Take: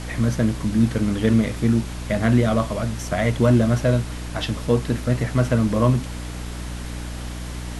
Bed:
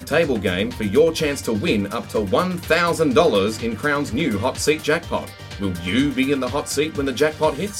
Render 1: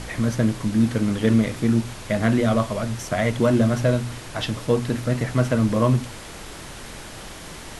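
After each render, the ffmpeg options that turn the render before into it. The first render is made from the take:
-af "bandreject=f=60:t=h:w=4,bandreject=f=120:t=h:w=4,bandreject=f=180:t=h:w=4,bandreject=f=240:t=h:w=4,bandreject=f=300:t=h:w=4"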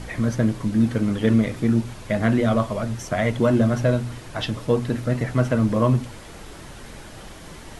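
-af "afftdn=nr=6:nf=-38"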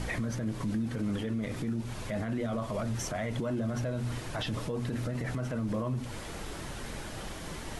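-af "acompressor=threshold=-24dB:ratio=6,alimiter=level_in=1dB:limit=-24dB:level=0:latency=1:release=24,volume=-1dB"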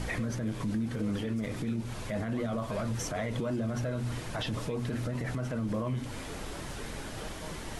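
-filter_complex "[1:a]volume=-29.5dB[a];[0:a][a]amix=inputs=2:normalize=0"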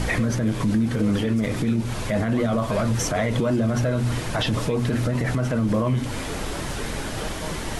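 -af "volume=10.5dB"

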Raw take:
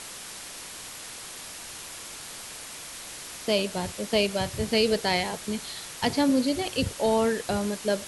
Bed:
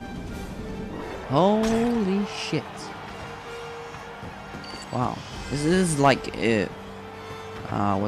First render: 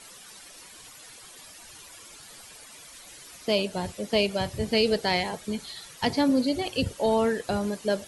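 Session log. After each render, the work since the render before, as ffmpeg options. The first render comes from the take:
-af "afftdn=nr=12:nf=-41"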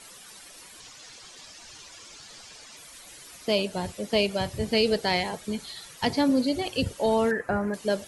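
-filter_complex "[0:a]asettb=1/sr,asplit=3[a][b][c];[a]atrim=end=0.804[d];[b]atrim=start=0.8:end=2.77,asetpts=PTS-STARTPTS,afade=t=in:d=0.004:c=qsin,afade=t=out:st=1.966:d=0.004:c=qsin,lowpass=f=6k:t=q:w=1.5[e];[c]atrim=start=2.766[f];[d][e]acrossfade=d=0.004:c1=hsin:c2=qsin[g];[g][f]acrossfade=d=0.004:c1=qsin:c2=hsin,asettb=1/sr,asplit=3[h][i][j];[h]atrim=end=7.314[k];[i]atrim=start=7.31:end=7.74,asetpts=PTS-STARTPTS,afade=t=in:d=0.004:c=qsin,afade=t=out:st=0.426:d=0.004:c=qsin,highshelf=f=2.5k:t=q:w=3:g=-12.5[l];[j]atrim=start=7.736[m];[k][l]acrossfade=d=0.004:c1=hsin:c2=qsin[n];[n][m]acrossfade=d=0.004:c1=qsin:c2=hsin"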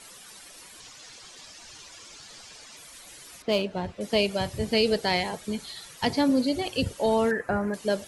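-filter_complex "[0:a]asettb=1/sr,asplit=3[a][b][c];[a]atrim=end=3.424[d];[b]atrim=start=3.42:end=4.01,asetpts=PTS-STARTPTS,afade=t=in:d=0.004:c=qsin,afade=t=out:st=0.586:d=0.004:c=qsin,adynamicsmooth=sensitivity=2:basefreq=2.9k[e];[c]atrim=start=4.006[f];[d][e]acrossfade=d=0.004:c1=hsin:c2=qsin[g];[g][f]acrossfade=d=0.004:c1=qsin:c2=hsin"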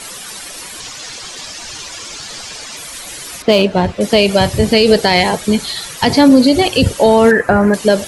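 -af "acontrast=82,alimiter=level_in=10.5dB:limit=-1dB:release=50:level=0:latency=1"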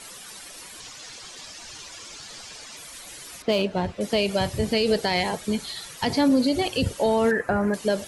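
-af "volume=-12dB"

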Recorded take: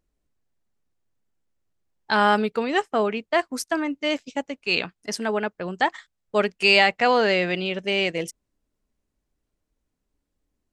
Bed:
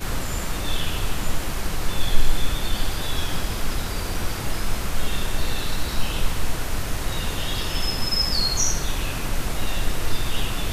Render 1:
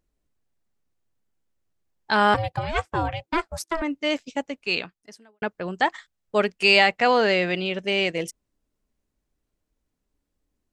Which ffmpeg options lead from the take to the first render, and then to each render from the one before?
-filter_complex "[0:a]asettb=1/sr,asplit=3[a][b][c];[a]atrim=end=2.344[d];[b]atrim=start=2.34:end=3.82,asetpts=PTS-STARTPTS,afade=t=in:d=0.004:c=qsin,afade=t=out:st=1.476:d=0.004:c=qsin,aeval=exprs='val(0)*sin(2*PI*330*n/s)':c=same[e];[c]atrim=start=3.816[f];[d][e]acrossfade=d=0.004:c1=hsin:c2=qsin[g];[g][f]acrossfade=d=0.004:c1=qsin:c2=hsin,asplit=2[h][i];[h]atrim=end=5.42,asetpts=PTS-STARTPTS,afade=t=out:st=4.64:d=0.78:c=qua[j];[i]atrim=start=5.42,asetpts=PTS-STARTPTS,afade=t=in:d=0.004:c=hsin[k];[j][k]concat=n=2:v=0:a=1"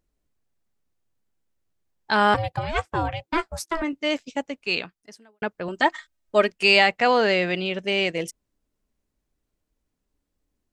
-filter_complex "[0:a]asettb=1/sr,asplit=3[a][b][c];[a]atrim=end=3.344[d];[b]atrim=start=3.34:end=3.93,asetpts=PTS-STARTPTS,afade=t=in:d=0.004:c=qsin,afade=t=out:st=0.586:d=0.004:c=qsin,asplit=2[e][f];[f]adelay=16,volume=-10dB[g];[e][g]amix=inputs=2:normalize=0,atrim=end_sample=26019[h];[c]atrim=start=3.926[i];[d][h]acrossfade=d=0.004:c1=hsin:c2=qsin[j];[j][i]acrossfade=d=0.004:c1=qsin:c2=hsin,asettb=1/sr,asplit=3[k][l][m];[k]atrim=end=5.684[n];[l]atrim=start=5.68:end=6.52,asetpts=PTS-STARTPTS,afade=t=in:d=0.004:c=qsin,afade=t=out:st=0.836:d=0.004:c=qsin,aecho=1:1:3.2:0.73,atrim=end_sample=37044[o];[m]atrim=start=6.516[p];[n][o]acrossfade=d=0.004:c1=hsin:c2=qsin[q];[q][p]acrossfade=d=0.004:c1=qsin:c2=hsin"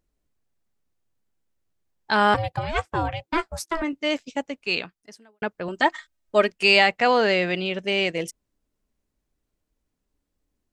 -af anull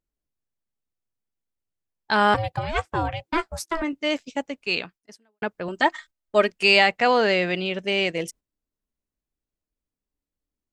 -af "agate=range=-11dB:threshold=-45dB:ratio=16:detection=peak"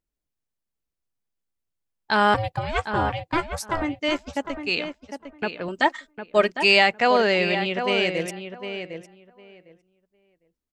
-filter_complex "[0:a]asplit=2[a][b];[b]adelay=755,lowpass=f=2.4k:p=1,volume=-8dB,asplit=2[c][d];[d]adelay=755,lowpass=f=2.4k:p=1,volume=0.17,asplit=2[e][f];[f]adelay=755,lowpass=f=2.4k:p=1,volume=0.17[g];[a][c][e][g]amix=inputs=4:normalize=0"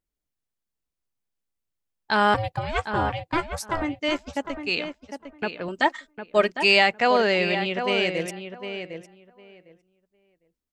-af "volume=-1dB"

